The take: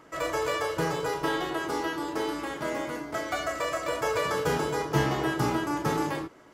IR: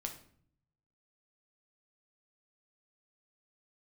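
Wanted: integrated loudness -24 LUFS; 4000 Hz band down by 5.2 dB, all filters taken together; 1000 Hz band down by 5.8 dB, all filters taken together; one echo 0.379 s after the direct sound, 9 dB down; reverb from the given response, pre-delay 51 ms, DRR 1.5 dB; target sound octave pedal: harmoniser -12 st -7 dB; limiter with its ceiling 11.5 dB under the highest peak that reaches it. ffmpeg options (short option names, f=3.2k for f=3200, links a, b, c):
-filter_complex "[0:a]equalizer=f=1k:t=o:g=-7,equalizer=f=4k:t=o:g=-7,alimiter=limit=-23.5dB:level=0:latency=1,aecho=1:1:379:0.355,asplit=2[a][b];[1:a]atrim=start_sample=2205,adelay=51[c];[b][c]afir=irnorm=-1:irlink=0,volume=-0.5dB[d];[a][d]amix=inputs=2:normalize=0,asplit=2[e][f];[f]asetrate=22050,aresample=44100,atempo=2,volume=-7dB[g];[e][g]amix=inputs=2:normalize=0,volume=6dB"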